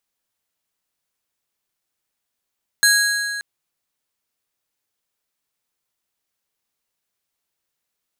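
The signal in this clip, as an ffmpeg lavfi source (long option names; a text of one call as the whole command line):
ffmpeg -f lavfi -i "aevalsrc='0.224*pow(10,-3*t/2.53)*sin(2*PI*1650*t)+0.168*pow(10,-3*t/1.922)*sin(2*PI*4125*t)+0.126*pow(10,-3*t/1.669)*sin(2*PI*6600*t)+0.0944*pow(10,-3*t/1.561)*sin(2*PI*8250*t)+0.0708*pow(10,-3*t/1.443)*sin(2*PI*10725*t)+0.0531*pow(10,-3*t/1.331)*sin(2*PI*14025*t)':duration=0.58:sample_rate=44100" out.wav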